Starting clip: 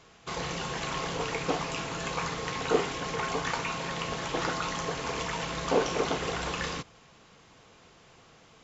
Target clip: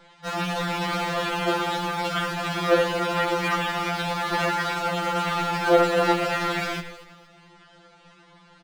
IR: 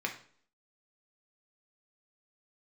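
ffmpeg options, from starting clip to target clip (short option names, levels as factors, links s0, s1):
-filter_complex "[0:a]lowpass=3100,asplit=2[s0][s1];[s1]acrusher=bits=5:mix=0:aa=0.000001,volume=0.299[s2];[s0][s2]amix=inputs=2:normalize=0,asetrate=57191,aresample=44100,atempo=0.771105,asplit=4[s3][s4][s5][s6];[s4]adelay=236,afreqshift=-81,volume=0.188[s7];[s5]adelay=472,afreqshift=-162,volume=0.0582[s8];[s6]adelay=708,afreqshift=-243,volume=0.0182[s9];[s3][s7][s8][s9]amix=inputs=4:normalize=0,asplit=2[s10][s11];[1:a]atrim=start_sample=2205,adelay=84[s12];[s11][s12]afir=irnorm=-1:irlink=0,volume=0.15[s13];[s10][s13]amix=inputs=2:normalize=0,afftfilt=real='re*2.83*eq(mod(b,8),0)':imag='im*2.83*eq(mod(b,8),0)':win_size=2048:overlap=0.75,volume=2.11"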